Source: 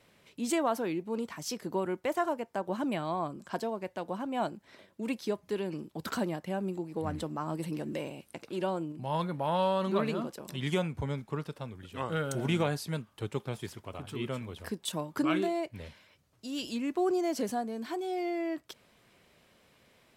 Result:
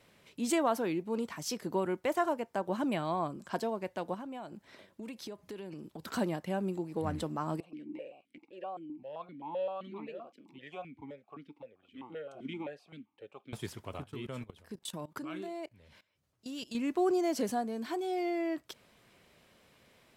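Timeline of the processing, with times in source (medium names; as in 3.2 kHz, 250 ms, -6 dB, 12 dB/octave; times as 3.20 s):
4.14–6.14 s: compression, threshold -40 dBFS
7.60–13.53 s: stepped vowel filter 7.7 Hz
14.04–16.75 s: level held to a coarse grid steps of 20 dB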